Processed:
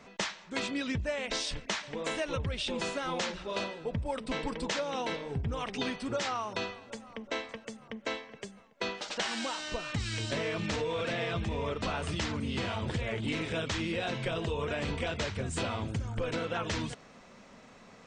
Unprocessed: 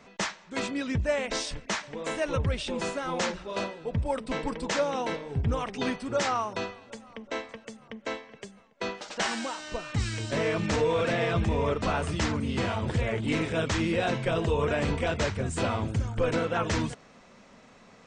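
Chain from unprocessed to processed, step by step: dynamic EQ 3500 Hz, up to +6 dB, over -47 dBFS, Q 1; compressor, threshold -30 dBFS, peak gain reduction 9 dB

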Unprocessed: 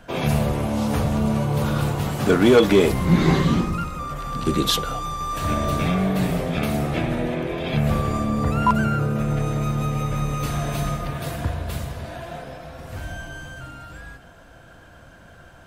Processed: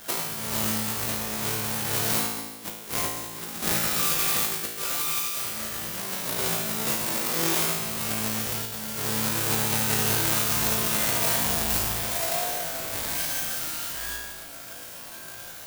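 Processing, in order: half-waves squared off; RIAA curve recording; negative-ratio compressor -22 dBFS, ratio -0.5; resonator 55 Hz, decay 1.2 s, harmonics all, mix 90%; gain +6.5 dB

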